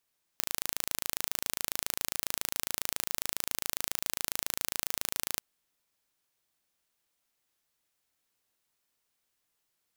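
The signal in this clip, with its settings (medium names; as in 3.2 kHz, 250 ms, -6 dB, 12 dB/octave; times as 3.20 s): pulse train 27.3 per s, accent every 0, -3.5 dBFS 4.99 s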